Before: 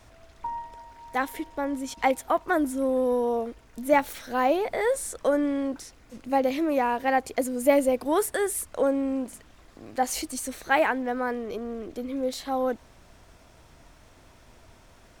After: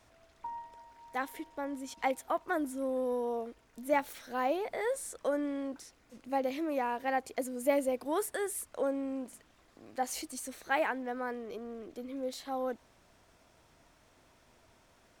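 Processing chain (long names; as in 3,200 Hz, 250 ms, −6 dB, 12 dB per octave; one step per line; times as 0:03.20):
low-shelf EQ 100 Hz −10 dB
level −8 dB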